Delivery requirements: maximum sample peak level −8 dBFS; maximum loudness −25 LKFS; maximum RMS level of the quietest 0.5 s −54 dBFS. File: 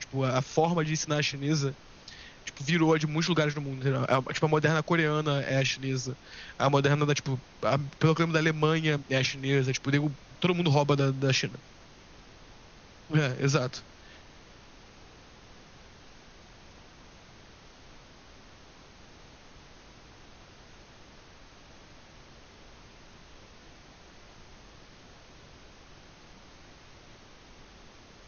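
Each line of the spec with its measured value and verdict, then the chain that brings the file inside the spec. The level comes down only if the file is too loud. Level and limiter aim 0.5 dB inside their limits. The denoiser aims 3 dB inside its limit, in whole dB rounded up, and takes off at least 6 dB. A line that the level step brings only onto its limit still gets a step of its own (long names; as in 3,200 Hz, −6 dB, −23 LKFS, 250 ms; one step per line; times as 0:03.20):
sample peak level −9.5 dBFS: in spec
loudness −27.5 LKFS: in spec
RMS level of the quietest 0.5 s −52 dBFS: out of spec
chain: broadband denoise 6 dB, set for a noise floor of −52 dBFS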